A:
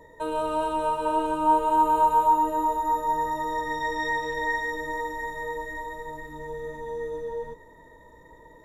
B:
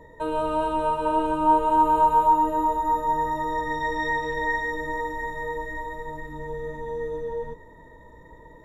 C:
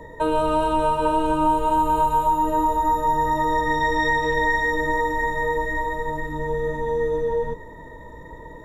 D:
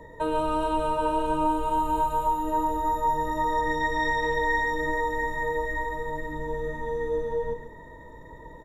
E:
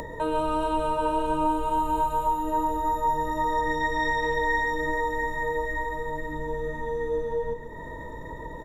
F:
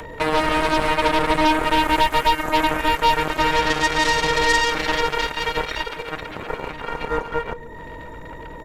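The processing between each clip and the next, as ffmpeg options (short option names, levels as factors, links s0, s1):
-af "bass=f=250:g=5,treble=f=4000:g=-6,volume=1.19"
-filter_complex "[0:a]acrossover=split=190|3000[s0][s1][s2];[s1]acompressor=threshold=0.0501:ratio=6[s3];[s0][s3][s2]amix=inputs=3:normalize=0,volume=2.51"
-af "aecho=1:1:136:0.376,volume=0.531"
-af "acompressor=mode=upward:threshold=0.0398:ratio=2.5"
-af "aeval=exprs='0.188*(cos(1*acos(clip(val(0)/0.188,-1,1)))-cos(1*PI/2))+0.0473*(cos(7*acos(clip(val(0)/0.188,-1,1)))-cos(7*PI/2))':c=same,volume=2.11"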